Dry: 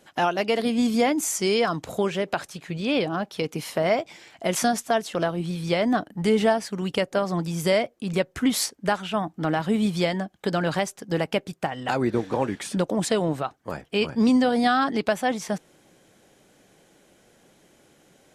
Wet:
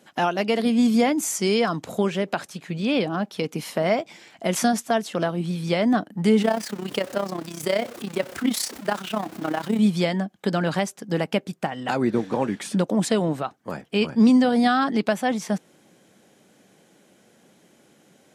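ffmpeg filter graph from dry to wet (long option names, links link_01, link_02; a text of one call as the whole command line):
ffmpeg -i in.wav -filter_complex "[0:a]asettb=1/sr,asplit=3[link_01][link_02][link_03];[link_01]atrim=end=6.424[link_04];[link_02]atrim=start=6.42:end=9.79,asetpts=PTS-STARTPTS,afade=type=in:duration=0.004:curve=qsin,afade=type=out:start_time=3.366:duration=0.004:curve=qsin,aeval=exprs='val(0)+0.5*0.0299*sgn(val(0))':channel_layout=same,equalizer=frequency=170:width_type=o:width=0.34:gain=-13,tremolo=f=32:d=0.75[link_05];[link_03]atrim=start=9.786[link_06];[link_04][link_05]acrossfade=duration=0.004:curve1=hsin:curve2=qsin[link_07];[link_07][link_06]acrossfade=duration=0.004:curve1=qsin:curve2=hsin,highpass=110,equalizer=frequency=210:width_type=o:width=0.59:gain=5.5" out.wav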